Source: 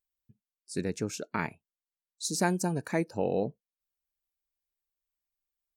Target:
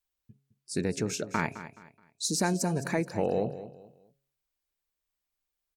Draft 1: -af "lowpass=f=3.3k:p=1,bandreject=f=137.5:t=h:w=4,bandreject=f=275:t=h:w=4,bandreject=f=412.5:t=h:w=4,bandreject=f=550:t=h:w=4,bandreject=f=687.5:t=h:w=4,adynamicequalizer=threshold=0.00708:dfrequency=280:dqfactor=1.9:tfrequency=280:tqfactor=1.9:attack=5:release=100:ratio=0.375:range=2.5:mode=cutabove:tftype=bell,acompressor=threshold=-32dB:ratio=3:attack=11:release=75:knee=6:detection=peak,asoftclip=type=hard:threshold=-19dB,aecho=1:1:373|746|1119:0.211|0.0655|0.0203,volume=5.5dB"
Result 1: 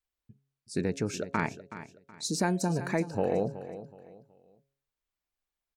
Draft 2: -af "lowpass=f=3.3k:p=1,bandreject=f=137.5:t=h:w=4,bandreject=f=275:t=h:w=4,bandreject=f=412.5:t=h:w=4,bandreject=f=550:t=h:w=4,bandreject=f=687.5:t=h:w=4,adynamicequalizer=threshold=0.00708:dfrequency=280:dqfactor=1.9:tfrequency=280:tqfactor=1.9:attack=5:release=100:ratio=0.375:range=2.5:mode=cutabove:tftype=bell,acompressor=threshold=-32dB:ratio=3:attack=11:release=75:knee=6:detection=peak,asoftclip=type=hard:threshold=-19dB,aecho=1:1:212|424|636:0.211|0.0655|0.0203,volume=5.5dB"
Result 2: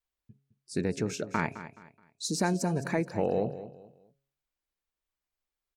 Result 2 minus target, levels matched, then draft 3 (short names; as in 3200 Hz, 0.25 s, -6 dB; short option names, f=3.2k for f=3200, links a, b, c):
8000 Hz band -4.0 dB
-af "lowpass=f=10k:p=1,bandreject=f=137.5:t=h:w=4,bandreject=f=275:t=h:w=4,bandreject=f=412.5:t=h:w=4,bandreject=f=550:t=h:w=4,bandreject=f=687.5:t=h:w=4,adynamicequalizer=threshold=0.00708:dfrequency=280:dqfactor=1.9:tfrequency=280:tqfactor=1.9:attack=5:release=100:ratio=0.375:range=2.5:mode=cutabove:tftype=bell,acompressor=threshold=-32dB:ratio=3:attack=11:release=75:knee=6:detection=peak,asoftclip=type=hard:threshold=-19dB,aecho=1:1:212|424|636:0.211|0.0655|0.0203,volume=5.5dB"